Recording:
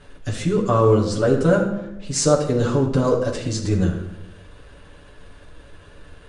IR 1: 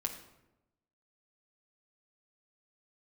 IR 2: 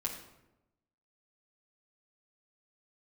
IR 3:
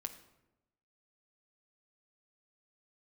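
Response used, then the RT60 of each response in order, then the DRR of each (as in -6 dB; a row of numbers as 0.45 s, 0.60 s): 2; 0.95 s, 0.95 s, 0.95 s; 0.0 dB, -4.5 dB, 4.5 dB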